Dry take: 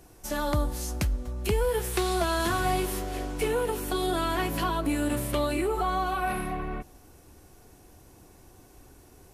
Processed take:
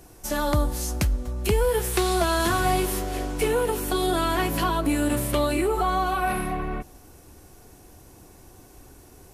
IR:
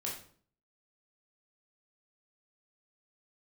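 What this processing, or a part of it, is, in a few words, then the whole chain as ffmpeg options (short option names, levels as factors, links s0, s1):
exciter from parts: -filter_complex "[0:a]asplit=2[s0][s1];[s1]highpass=4000,asoftclip=type=tanh:threshold=0.0398,volume=0.211[s2];[s0][s2]amix=inputs=2:normalize=0,volume=1.58"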